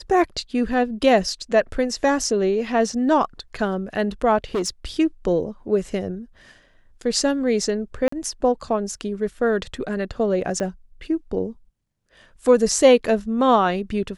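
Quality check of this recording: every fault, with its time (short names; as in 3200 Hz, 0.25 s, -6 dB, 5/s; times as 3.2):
4.54–4.69 clipped -19 dBFS
8.08–8.12 gap 44 ms
10.6 pop -15 dBFS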